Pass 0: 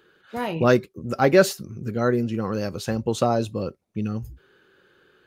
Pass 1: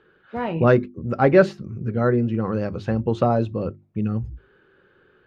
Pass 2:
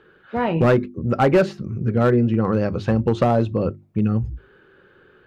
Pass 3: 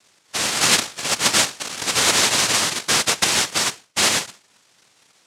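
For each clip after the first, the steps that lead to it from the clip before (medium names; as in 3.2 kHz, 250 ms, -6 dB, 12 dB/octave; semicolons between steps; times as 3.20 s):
low-pass 2.3 kHz 12 dB/octave; bass shelf 150 Hz +7 dB; hum notches 50/100/150/200/250/300/350 Hz; trim +1 dB
compression 2:1, threshold -19 dBFS, peak gain reduction 6.5 dB; overload inside the chain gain 15 dB; trim +5 dB
small resonant body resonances 210/500/3200 Hz, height 14 dB, ringing for 25 ms; noise-vocoded speech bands 1; trim -11.5 dB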